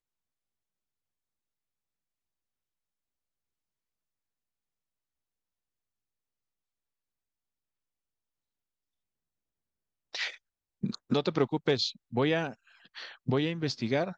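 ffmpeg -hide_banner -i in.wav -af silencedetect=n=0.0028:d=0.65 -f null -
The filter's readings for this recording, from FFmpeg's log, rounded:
silence_start: 0.00
silence_end: 10.13 | silence_duration: 10.13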